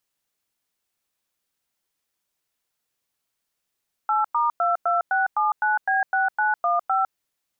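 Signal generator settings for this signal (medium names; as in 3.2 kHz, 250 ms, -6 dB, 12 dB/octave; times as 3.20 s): DTMF "8*22679B6915", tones 155 ms, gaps 100 ms, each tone -21 dBFS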